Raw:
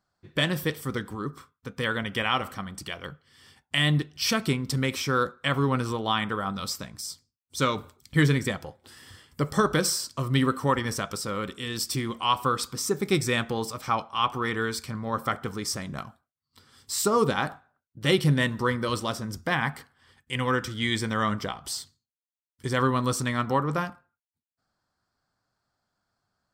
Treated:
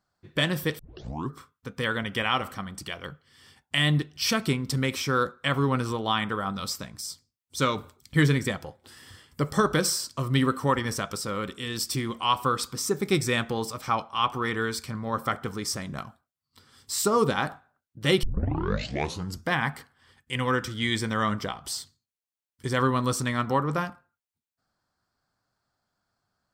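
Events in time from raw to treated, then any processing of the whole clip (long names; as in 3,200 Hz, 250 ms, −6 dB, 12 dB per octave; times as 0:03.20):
0:00.79: tape start 0.52 s
0:18.23: tape start 1.20 s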